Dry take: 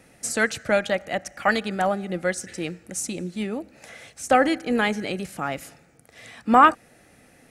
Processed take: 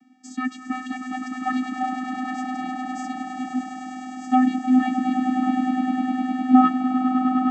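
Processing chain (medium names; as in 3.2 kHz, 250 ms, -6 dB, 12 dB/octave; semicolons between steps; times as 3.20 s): echo with a slow build-up 102 ms, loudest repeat 8, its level -10 dB; vocoder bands 16, square 255 Hz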